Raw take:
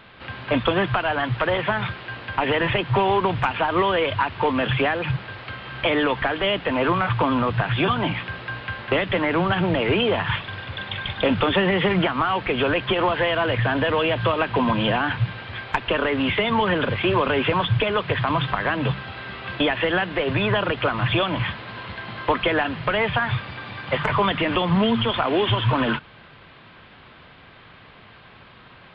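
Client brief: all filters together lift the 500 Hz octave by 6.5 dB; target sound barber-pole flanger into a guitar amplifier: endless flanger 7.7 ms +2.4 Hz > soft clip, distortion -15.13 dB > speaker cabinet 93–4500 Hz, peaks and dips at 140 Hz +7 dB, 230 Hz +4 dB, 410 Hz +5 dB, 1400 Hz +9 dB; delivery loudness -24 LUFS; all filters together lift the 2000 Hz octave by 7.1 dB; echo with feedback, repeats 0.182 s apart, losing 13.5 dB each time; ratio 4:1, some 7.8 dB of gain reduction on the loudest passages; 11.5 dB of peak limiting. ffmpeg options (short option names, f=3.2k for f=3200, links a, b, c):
-filter_complex "[0:a]equalizer=f=500:t=o:g=4.5,equalizer=f=2k:t=o:g=4.5,acompressor=threshold=-23dB:ratio=4,alimiter=limit=-20dB:level=0:latency=1,aecho=1:1:182|364:0.211|0.0444,asplit=2[a][b];[b]adelay=7.7,afreqshift=2.4[c];[a][c]amix=inputs=2:normalize=1,asoftclip=threshold=-27.5dB,highpass=93,equalizer=f=140:t=q:w=4:g=7,equalizer=f=230:t=q:w=4:g=4,equalizer=f=410:t=q:w=4:g=5,equalizer=f=1.4k:t=q:w=4:g=9,lowpass=f=4.5k:w=0.5412,lowpass=f=4.5k:w=1.3066,volume=7.5dB"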